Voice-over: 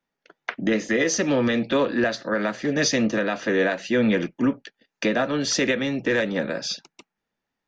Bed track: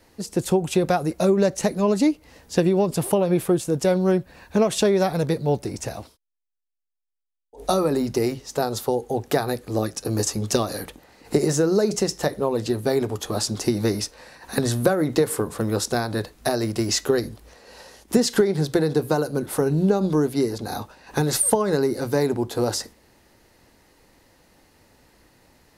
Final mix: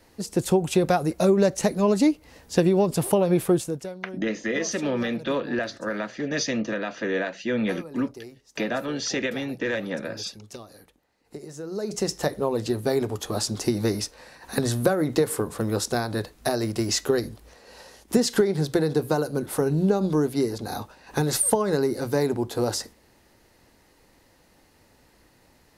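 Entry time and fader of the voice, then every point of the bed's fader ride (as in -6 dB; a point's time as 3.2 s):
3.55 s, -5.0 dB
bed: 3.61 s -0.5 dB
3.95 s -19.5 dB
11.51 s -19.5 dB
12.08 s -2 dB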